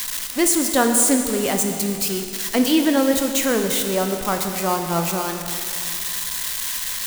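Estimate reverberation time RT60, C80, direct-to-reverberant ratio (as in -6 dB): 2.6 s, 6.5 dB, 4.5 dB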